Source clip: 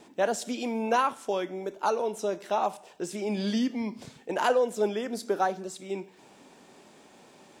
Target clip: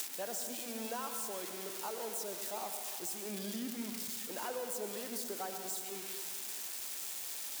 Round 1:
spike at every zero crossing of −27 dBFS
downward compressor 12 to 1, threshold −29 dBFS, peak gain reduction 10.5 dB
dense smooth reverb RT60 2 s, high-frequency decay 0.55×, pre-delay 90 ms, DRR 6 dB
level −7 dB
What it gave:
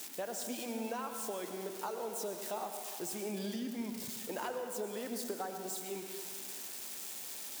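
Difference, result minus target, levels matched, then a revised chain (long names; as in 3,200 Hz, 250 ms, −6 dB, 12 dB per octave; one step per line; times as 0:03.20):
spike at every zero crossing: distortion −11 dB
spike at every zero crossing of −16 dBFS
downward compressor 12 to 1, threshold −29 dBFS, peak gain reduction 11.5 dB
dense smooth reverb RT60 2 s, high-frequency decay 0.55×, pre-delay 90 ms, DRR 6 dB
level −7 dB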